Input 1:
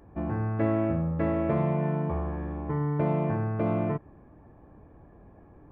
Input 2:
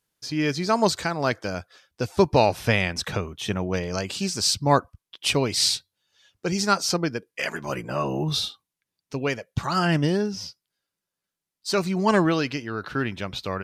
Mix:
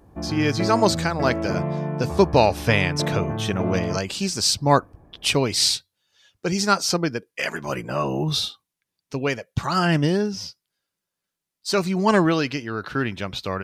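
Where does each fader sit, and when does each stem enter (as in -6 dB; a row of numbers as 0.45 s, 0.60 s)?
+0.5 dB, +2.0 dB; 0.00 s, 0.00 s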